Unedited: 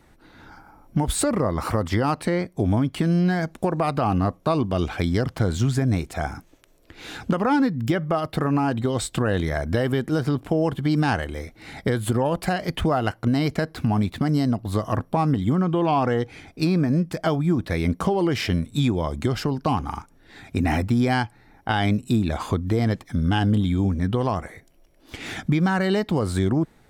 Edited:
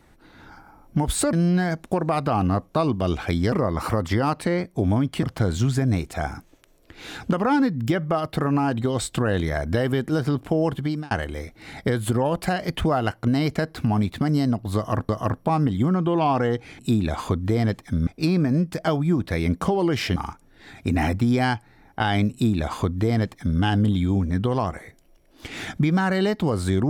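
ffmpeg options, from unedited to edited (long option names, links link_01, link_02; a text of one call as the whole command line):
ffmpeg -i in.wav -filter_complex "[0:a]asplit=9[link_01][link_02][link_03][link_04][link_05][link_06][link_07][link_08][link_09];[link_01]atrim=end=1.332[link_10];[link_02]atrim=start=3.038:end=5.232[link_11];[link_03]atrim=start=1.328:end=3.042[link_12];[link_04]atrim=start=5.228:end=11.11,asetpts=PTS-STARTPTS,afade=type=out:start_time=5.542:duration=0.34[link_13];[link_05]atrim=start=11.11:end=15.092,asetpts=PTS-STARTPTS,afade=type=in:duration=0.004:curve=hsin[link_14];[link_06]atrim=start=14.758:end=16.462[link_15];[link_07]atrim=start=22.008:end=23.292[link_16];[link_08]atrim=start=16.458:end=18.552[link_17];[link_09]atrim=start=19.848[link_18];[link_10][link_11]acrossfade=duration=0.004:curve1=hsin:curve2=hsin[link_19];[link_19][link_12]acrossfade=duration=0.004:curve1=hsin:curve2=hsin[link_20];[link_13][link_14]concat=n=2:v=0:a=1[link_21];[link_20][link_21]acrossfade=duration=0.004:curve1=hsin:curve2=hsin[link_22];[link_22][link_15]acrossfade=duration=0.004:curve1=hsin:curve2=hsin[link_23];[link_23][link_16]acrossfade=duration=0.004:curve1=hsin:curve2=hsin[link_24];[link_24][link_17]acrossfade=duration=0.004:curve1=hsin:curve2=hsin[link_25];[link_25][link_18]acrossfade=duration=0.004:curve1=hsin:curve2=hsin" out.wav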